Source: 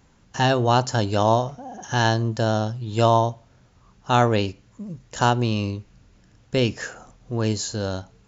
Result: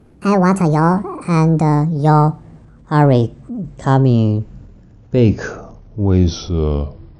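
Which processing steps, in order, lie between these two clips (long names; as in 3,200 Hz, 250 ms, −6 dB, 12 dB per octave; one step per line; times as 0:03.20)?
gliding playback speed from 158% → 72%
tilt shelving filter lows +9.5 dB, about 1,100 Hz
transient designer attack −3 dB, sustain +6 dB
level +2 dB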